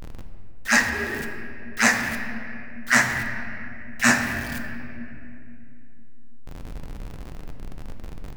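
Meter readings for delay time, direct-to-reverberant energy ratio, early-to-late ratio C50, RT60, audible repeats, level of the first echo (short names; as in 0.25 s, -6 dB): none, 4.0 dB, 5.5 dB, 2.7 s, none, none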